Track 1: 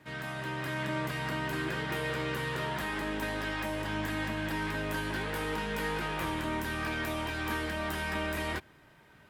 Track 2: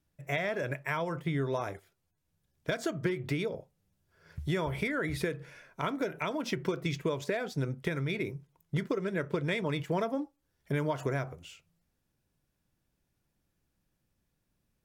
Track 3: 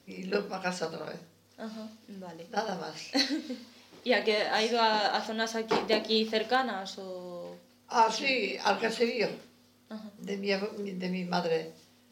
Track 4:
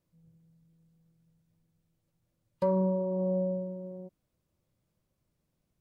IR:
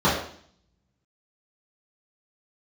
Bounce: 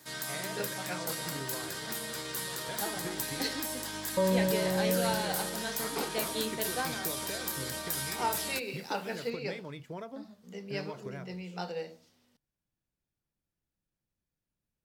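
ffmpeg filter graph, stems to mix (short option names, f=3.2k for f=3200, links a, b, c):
-filter_complex "[0:a]lowshelf=f=160:g=-9.5,alimiter=level_in=7dB:limit=-24dB:level=0:latency=1:release=90,volume=-7dB,aexciter=amount=9.1:drive=2.4:freq=3.9k,volume=-1.5dB[a];[1:a]volume=-11dB[b];[2:a]adelay=250,volume=-8dB[c];[3:a]adelay=1550,volume=-0.5dB[d];[a][b][c][d]amix=inputs=4:normalize=0"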